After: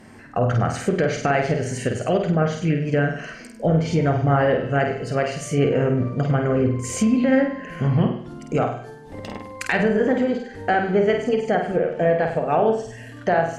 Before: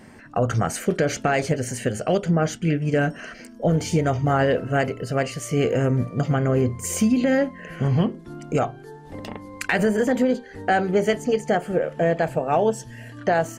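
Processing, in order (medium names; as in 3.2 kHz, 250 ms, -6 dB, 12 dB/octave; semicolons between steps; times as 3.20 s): flutter echo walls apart 8.5 m, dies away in 0.55 s; low-pass that closes with the level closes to 2.9 kHz, closed at -15 dBFS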